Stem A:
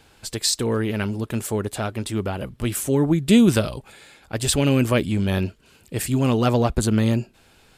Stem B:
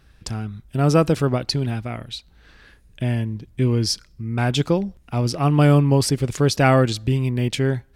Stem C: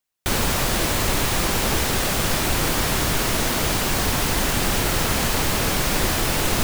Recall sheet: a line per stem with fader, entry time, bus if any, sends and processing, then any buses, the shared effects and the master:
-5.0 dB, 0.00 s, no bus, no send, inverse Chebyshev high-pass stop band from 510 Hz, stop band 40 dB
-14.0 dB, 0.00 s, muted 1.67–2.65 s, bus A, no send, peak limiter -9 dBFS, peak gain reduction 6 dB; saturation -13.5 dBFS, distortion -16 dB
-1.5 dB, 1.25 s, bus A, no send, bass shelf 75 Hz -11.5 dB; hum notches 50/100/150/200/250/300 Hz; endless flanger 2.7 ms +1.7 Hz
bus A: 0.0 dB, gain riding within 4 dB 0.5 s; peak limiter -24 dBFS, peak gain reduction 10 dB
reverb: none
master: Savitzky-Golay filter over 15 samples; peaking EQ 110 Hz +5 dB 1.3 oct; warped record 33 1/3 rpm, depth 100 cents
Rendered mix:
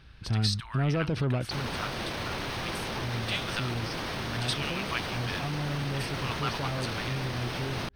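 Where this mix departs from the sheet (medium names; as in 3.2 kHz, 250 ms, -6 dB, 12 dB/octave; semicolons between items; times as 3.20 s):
stem B -14.0 dB -> -5.5 dB; stem C: missing endless flanger 2.7 ms +1.7 Hz; master: missing warped record 33 1/3 rpm, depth 100 cents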